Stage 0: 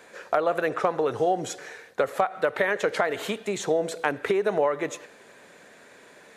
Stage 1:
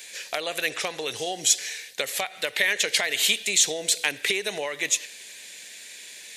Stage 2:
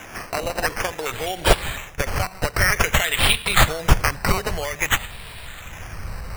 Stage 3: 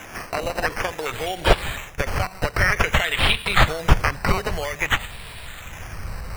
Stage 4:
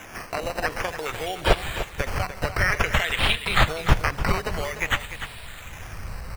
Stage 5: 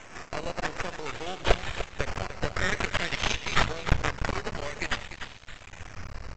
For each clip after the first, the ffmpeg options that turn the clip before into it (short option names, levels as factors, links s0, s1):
-af "aexciter=amount=10.3:drive=7.7:freq=2000,volume=0.376"
-af "acrusher=samples=10:mix=1:aa=0.000001:lfo=1:lforange=6:lforate=0.52,asubboost=boost=10:cutoff=100,volume=1.58"
-filter_complex "[0:a]acrossover=split=4500[s0][s1];[s1]acompressor=threshold=0.02:ratio=4:attack=1:release=60[s2];[s0][s2]amix=inputs=2:normalize=0"
-af "aecho=1:1:297:0.282,volume=0.708"
-af "bandreject=f=60:t=h:w=6,bandreject=f=120:t=h:w=6,bandreject=f=180:t=h:w=6,aresample=16000,aeval=exprs='max(val(0),0)':c=same,aresample=44100,volume=0.891"